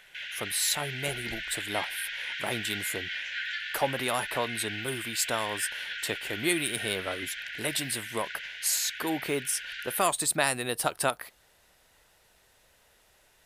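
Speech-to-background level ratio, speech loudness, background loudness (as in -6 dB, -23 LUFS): 4.5 dB, -31.0 LUFS, -35.5 LUFS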